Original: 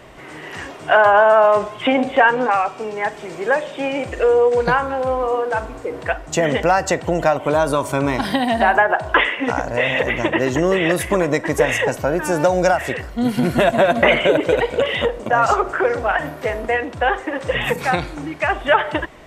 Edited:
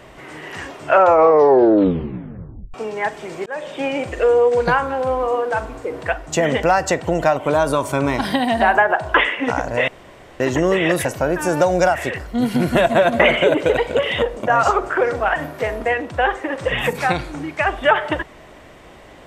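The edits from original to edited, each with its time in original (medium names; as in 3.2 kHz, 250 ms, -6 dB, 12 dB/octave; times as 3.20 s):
0.78 s: tape stop 1.96 s
3.46–3.71 s: fade in
9.88–10.40 s: room tone
11.05–11.88 s: delete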